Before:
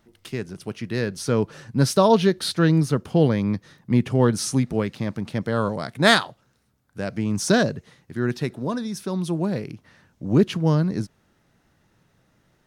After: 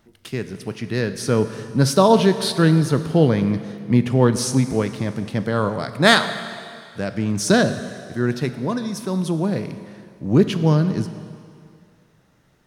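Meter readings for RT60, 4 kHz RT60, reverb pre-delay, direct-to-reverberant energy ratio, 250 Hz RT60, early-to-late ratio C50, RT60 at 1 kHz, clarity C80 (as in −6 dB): 2.3 s, 2.2 s, 15 ms, 10.0 dB, 2.1 s, 11.0 dB, 2.3 s, 11.5 dB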